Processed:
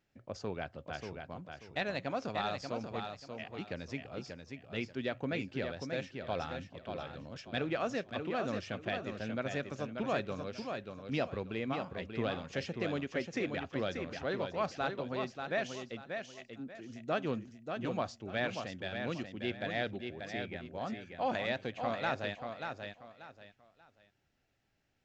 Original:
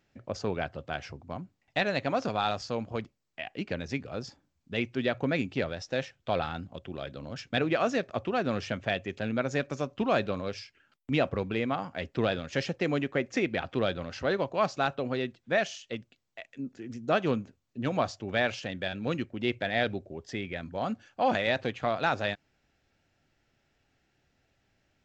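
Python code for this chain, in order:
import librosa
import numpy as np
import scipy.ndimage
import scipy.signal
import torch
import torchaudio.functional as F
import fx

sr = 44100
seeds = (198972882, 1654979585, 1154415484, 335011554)

y = fx.echo_feedback(x, sr, ms=586, feedback_pct=27, wet_db=-6)
y = y * librosa.db_to_amplitude(-7.5)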